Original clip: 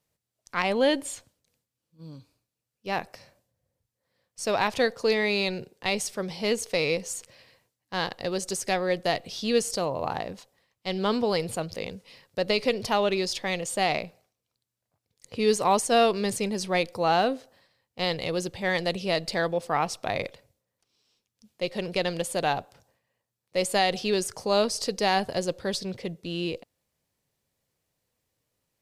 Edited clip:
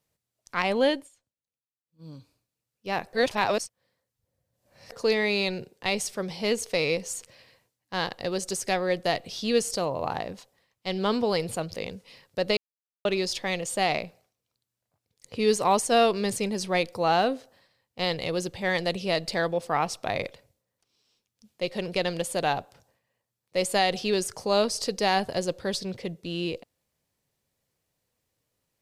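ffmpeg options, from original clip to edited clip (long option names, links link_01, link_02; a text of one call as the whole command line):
ffmpeg -i in.wav -filter_complex "[0:a]asplit=7[link_01][link_02][link_03][link_04][link_05][link_06][link_07];[link_01]atrim=end=1.09,asetpts=PTS-STARTPTS,afade=type=out:start_time=0.86:duration=0.23:silence=0.0630957[link_08];[link_02]atrim=start=1.09:end=1.86,asetpts=PTS-STARTPTS,volume=-24dB[link_09];[link_03]atrim=start=1.86:end=3.132,asetpts=PTS-STARTPTS,afade=type=in:duration=0.23:silence=0.0630957[link_10];[link_04]atrim=start=3.128:end=4.922,asetpts=PTS-STARTPTS,areverse[link_11];[link_05]atrim=start=4.918:end=12.57,asetpts=PTS-STARTPTS,afade=type=out:start_time=7.648:duration=0.004:curve=hsin[link_12];[link_06]atrim=start=12.57:end=13.05,asetpts=PTS-STARTPTS,volume=0[link_13];[link_07]atrim=start=13.05,asetpts=PTS-STARTPTS,afade=type=in:duration=0.004:curve=hsin[link_14];[link_08][link_09][link_10]concat=n=3:v=0:a=1[link_15];[link_15][link_11]acrossfade=duration=0.004:curve1=hsin:curve2=hsin[link_16];[link_12][link_13][link_14]concat=n=3:v=0:a=1[link_17];[link_16][link_17]acrossfade=duration=0.004:curve1=hsin:curve2=hsin" out.wav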